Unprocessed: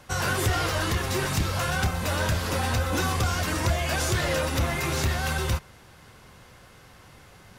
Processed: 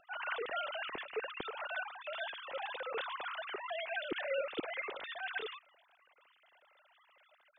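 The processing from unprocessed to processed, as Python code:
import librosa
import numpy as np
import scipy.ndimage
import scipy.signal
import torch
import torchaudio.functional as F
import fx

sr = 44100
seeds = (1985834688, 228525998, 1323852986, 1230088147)

y = fx.sine_speech(x, sr)
y = fx.band_shelf(y, sr, hz=1100.0, db=-8.0, octaves=2.5)
y = y * 10.0 ** (-8.0 / 20.0)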